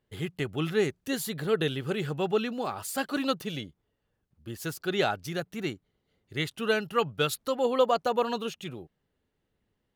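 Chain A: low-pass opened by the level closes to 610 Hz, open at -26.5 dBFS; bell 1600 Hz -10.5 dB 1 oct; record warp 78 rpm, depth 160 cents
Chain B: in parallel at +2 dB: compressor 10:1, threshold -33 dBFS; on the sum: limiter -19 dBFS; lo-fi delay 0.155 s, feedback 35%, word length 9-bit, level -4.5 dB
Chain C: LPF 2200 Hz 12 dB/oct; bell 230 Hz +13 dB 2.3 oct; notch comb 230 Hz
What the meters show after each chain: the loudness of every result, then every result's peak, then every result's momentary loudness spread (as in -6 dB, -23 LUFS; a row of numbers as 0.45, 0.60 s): -31.0, -28.5, -24.0 LUFS; -14.0, -15.0, -7.0 dBFS; 12, 10, 12 LU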